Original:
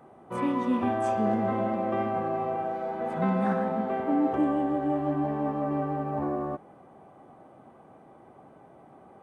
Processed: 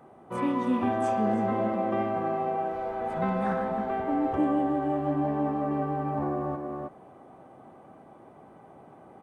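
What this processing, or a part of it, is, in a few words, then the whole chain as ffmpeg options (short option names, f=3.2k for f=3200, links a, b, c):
ducked delay: -filter_complex "[0:a]asplit=3[a][b][c];[b]adelay=317,volume=-3.5dB[d];[c]apad=whole_len=420978[e];[d][e]sidechaincompress=threshold=-32dB:ratio=8:attack=16:release=448[f];[a][f]amix=inputs=2:normalize=0,asplit=3[g][h][i];[g]afade=t=out:st=2.72:d=0.02[j];[h]asubboost=boost=8.5:cutoff=71,afade=t=in:st=2.72:d=0.02,afade=t=out:st=4.36:d=0.02[k];[i]afade=t=in:st=4.36:d=0.02[l];[j][k][l]amix=inputs=3:normalize=0"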